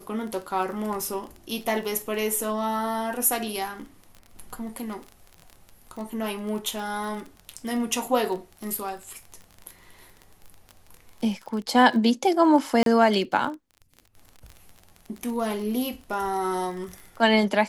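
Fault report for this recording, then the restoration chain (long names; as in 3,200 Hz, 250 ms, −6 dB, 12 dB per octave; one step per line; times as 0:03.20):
surface crackle 24 per second −32 dBFS
0:12.83–0:12.86: drop-out 32 ms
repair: click removal
repair the gap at 0:12.83, 32 ms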